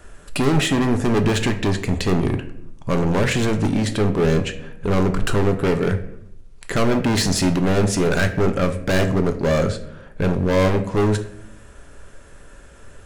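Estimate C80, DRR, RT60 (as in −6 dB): 14.5 dB, 6.5 dB, 0.70 s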